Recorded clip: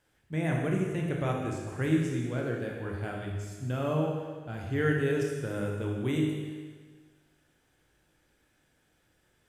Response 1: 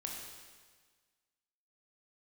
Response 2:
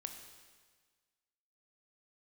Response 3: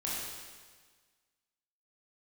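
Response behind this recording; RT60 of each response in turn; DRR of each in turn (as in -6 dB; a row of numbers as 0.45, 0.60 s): 1; 1.5, 1.5, 1.5 s; -1.0, 5.0, -7.0 dB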